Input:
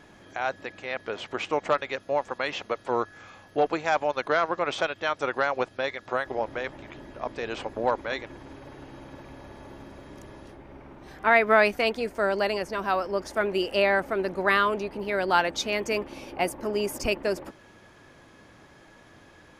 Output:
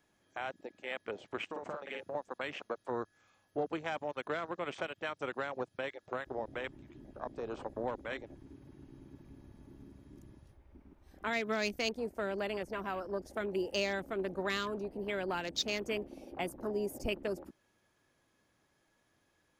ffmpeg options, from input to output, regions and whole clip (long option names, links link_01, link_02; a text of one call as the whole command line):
ffmpeg -i in.wav -filter_complex "[0:a]asettb=1/sr,asplit=3[link_01][link_02][link_03];[link_01]atrim=end=1.494[link_04];[link_02]atrim=start=1.49:end=2.15,asetpts=PTS-STARTPTS,afade=type=in:duration=0.004:curve=qsin,afade=type=out:start_time=0.656:duration=0.004:curve=qsin,acompressor=threshold=-31dB:ratio=6:attack=3.2:release=140:knee=1:detection=peak,asplit=2[link_05][link_06];[link_06]adelay=49,volume=-2dB[link_07];[link_05][link_07]amix=inputs=2:normalize=0,atrim=end_sample=29106[link_08];[link_03]atrim=start=2.146[link_09];[link_04][link_08]acrossfade=duration=0.004:curve1=hsin:curve2=qsin[link_10];[link_10][link_09]acrossfade=duration=0.004:curve1=qsin:curve2=hsin,afwtdn=0.02,aemphasis=mode=production:type=50kf,acrossover=split=380|3000[link_11][link_12][link_13];[link_12]acompressor=threshold=-31dB:ratio=6[link_14];[link_11][link_14][link_13]amix=inputs=3:normalize=0,volume=-6dB" out.wav